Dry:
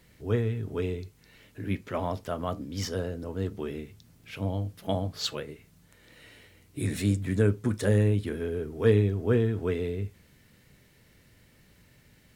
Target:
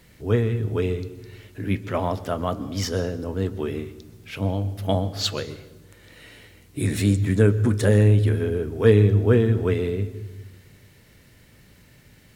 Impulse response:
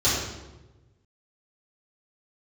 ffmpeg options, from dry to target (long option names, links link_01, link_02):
-filter_complex "[0:a]asplit=2[link_01][link_02];[1:a]atrim=start_sample=2205,adelay=121[link_03];[link_02][link_03]afir=irnorm=-1:irlink=0,volume=-32dB[link_04];[link_01][link_04]amix=inputs=2:normalize=0,volume=6dB"